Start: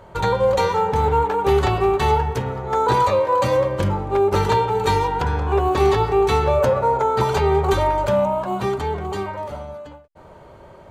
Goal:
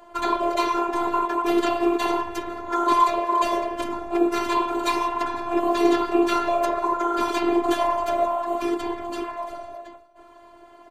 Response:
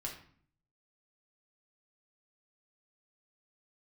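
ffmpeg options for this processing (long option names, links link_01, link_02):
-filter_complex "[0:a]afftfilt=real='hypot(re,im)*cos(2*PI*random(0))':imag='hypot(re,im)*sin(2*PI*random(1))':win_size=512:overlap=0.75,acrossover=split=170|970[link_01][link_02][link_03];[link_01]asoftclip=type=hard:threshold=-32dB[link_04];[link_04][link_02][link_03]amix=inputs=3:normalize=0,lowshelf=frequency=190:gain=-10,afftfilt=real='hypot(re,im)*cos(PI*b)':imag='0':win_size=512:overlap=0.75,aecho=1:1:501:0.075,volume=8dB"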